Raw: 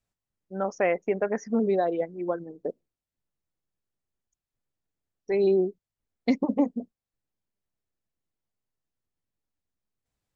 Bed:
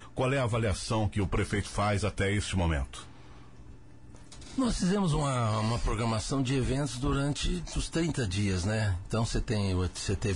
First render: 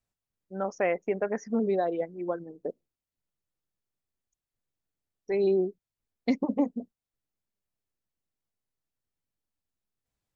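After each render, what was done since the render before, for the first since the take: trim -2.5 dB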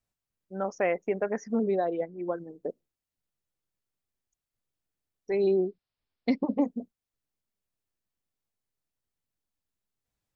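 1.63–2.35 s: distance through air 110 m; 5.42–6.62 s: careless resampling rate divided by 4×, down none, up filtered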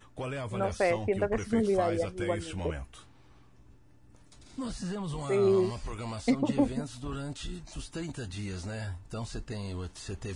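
add bed -8 dB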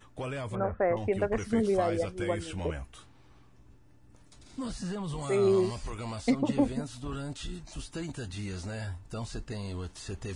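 0.55–0.97 s: steep low-pass 1.8 kHz; 5.22–5.90 s: treble shelf 5.3 kHz +5.5 dB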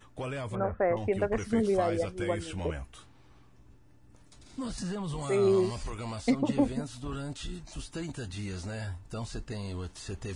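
4.78–5.90 s: upward compressor, threshold -32 dBFS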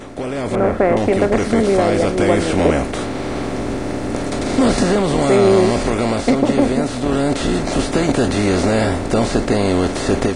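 spectral levelling over time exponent 0.4; level rider gain up to 13 dB

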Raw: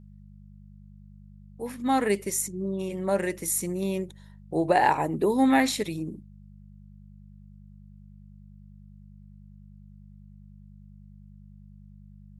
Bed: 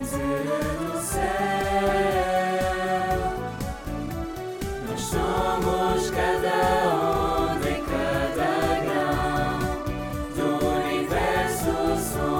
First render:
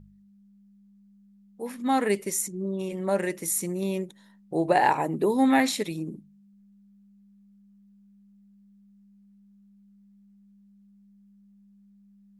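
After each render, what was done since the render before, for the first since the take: de-hum 50 Hz, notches 3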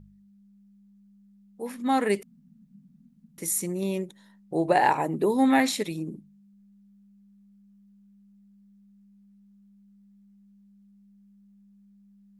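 2.23–3.38 s: room tone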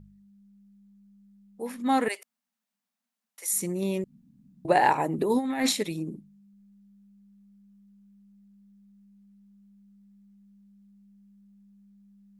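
2.08–3.53 s: high-pass 660 Hz 24 dB/octave; 4.04–4.65 s: room tone; 5.18–5.73 s: compressor with a negative ratio -24 dBFS, ratio -0.5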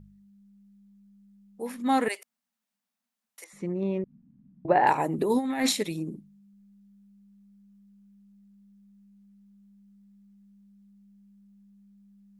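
3.44–4.87 s: low-pass 1.8 kHz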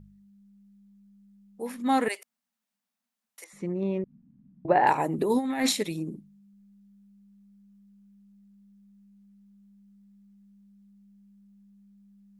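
no audible change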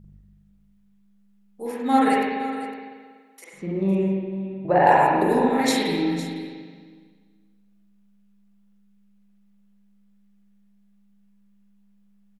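delay 507 ms -14.5 dB; spring tank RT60 1.6 s, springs 41/47 ms, chirp 60 ms, DRR -5.5 dB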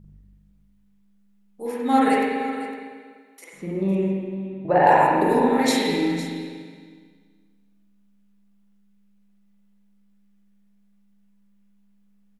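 FDN reverb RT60 1.6 s, low-frequency decay 0.9×, high-frequency decay 0.9×, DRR 8.5 dB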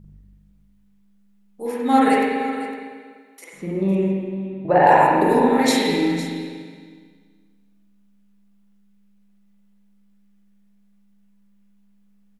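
trim +2.5 dB; peak limiter -2 dBFS, peak gain reduction 1 dB

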